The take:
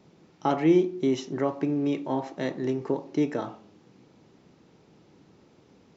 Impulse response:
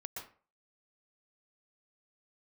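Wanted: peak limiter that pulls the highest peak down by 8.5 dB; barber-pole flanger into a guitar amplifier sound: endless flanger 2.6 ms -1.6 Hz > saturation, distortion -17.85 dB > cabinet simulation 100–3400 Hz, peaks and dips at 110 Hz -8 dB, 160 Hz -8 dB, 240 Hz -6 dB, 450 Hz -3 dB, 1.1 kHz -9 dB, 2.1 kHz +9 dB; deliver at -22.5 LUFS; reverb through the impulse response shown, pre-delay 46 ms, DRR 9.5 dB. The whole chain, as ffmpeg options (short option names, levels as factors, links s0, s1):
-filter_complex "[0:a]alimiter=limit=0.112:level=0:latency=1,asplit=2[s0][s1];[1:a]atrim=start_sample=2205,adelay=46[s2];[s1][s2]afir=irnorm=-1:irlink=0,volume=0.398[s3];[s0][s3]amix=inputs=2:normalize=0,asplit=2[s4][s5];[s5]adelay=2.6,afreqshift=-1.6[s6];[s4][s6]amix=inputs=2:normalize=1,asoftclip=threshold=0.0708,highpass=100,equalizer=f=110:t=q:w=4:g=-8,equalizer=f=160:t=q:w=4:g=-8,equalizer=f=240:t=q:w=4:g=-6,equalizer=f=450:t=q:w=4:g=-3,equalizer=f=1100:t=q:w=4:g=-9,equalizer=f=2100:t=q:w=4:g=9,lowpass=f=3400:w=0.5412,lowpass=f=3400:w=1.3066,volume=5.01"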